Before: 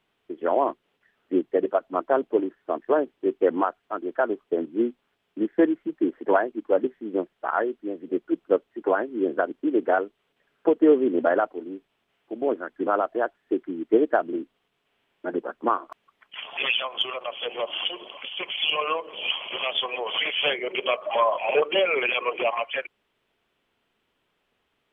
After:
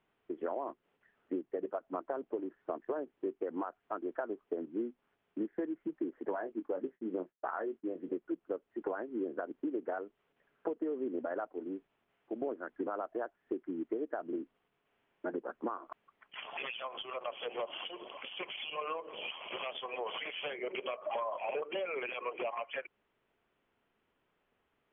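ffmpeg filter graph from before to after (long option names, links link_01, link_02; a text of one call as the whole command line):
ffmpeg -i in.wav -filter_complex "[0:a]asettb=1/sr,asplit=3[link_01][link_02][link_03];[link_01]atrim=end=6.304[link_04];[link_02]atrim=start=6.3:end=8.09,asetpts=PTS-STARTPTS,afade=type=in:duration=0.004:curve=qsin,afade=type=out:start_time=1.786:duration=0.004:curve=qsin,agate=range=-33dB:threshold=-45dB:ratio=3:release=100:detection=peak,asplit=2[link_05][link_06];[link_06]adelay=22,volume=-9.5dB[link_07];[link_05][link_07]amix=inputs=2:normalize=0,atrim=end_sample=78939[link_08];[link_03]atrim=start=8.086[link_09];[link_04][link_08]acrossfade=duration=0.004:curve1=hsin:curve2=qsin[link_10];[link_10][link_09]acrossfade=duration=0.004:curve1=qsin:curve2=hsin,alimiter=limit=-13dB:level=0:latency=1:release=107,acompressor=threshold=-30dB:ratio=6,lowpass=2200,volume=-3.5dB" out.wav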